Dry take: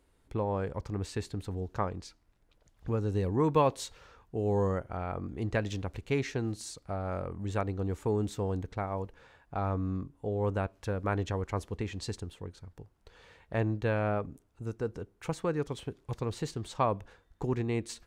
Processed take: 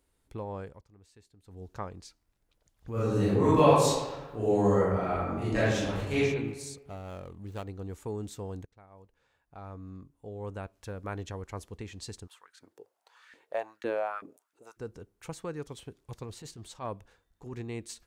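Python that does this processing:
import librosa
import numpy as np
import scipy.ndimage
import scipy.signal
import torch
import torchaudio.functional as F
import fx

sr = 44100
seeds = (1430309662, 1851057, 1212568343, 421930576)

y = fx.reverb_throw(x, sr, start_s=2.92, length_s=3.28, rt60_s=1.2, drr_db=-12.0)
y = fx.median_filter(y, sr, points=25, at=(6.85, 7.65))
y = fx.filter_lfo_highpass(y, sr, shape='saw_up', hz=fx.line((12.26, 0.87), (14.76, 4.1)), low_hz=270.0, high_hz=1800.0, q=3.9, at=(12.26, 14.76), fade=0.02)
y = fx.transient(y, sr, attack_db=-10, sustain_db=-1, at=(16.24, 17.53), fade=0.02)
y = fx.edit(y, sr, fx.fade_down_up(start_s=0.6, length_s=1.07, db=-18.0, fade_s=0.24),
    fx.fade_in_from(start_s=8.65, length_s=2.34, floor_db=-20.0), tone=tone)
y = fx.high_shelf(y, sr, hz=4700.0, db=9.0)
y = y * librosa.db_to_amplitude(-6.5)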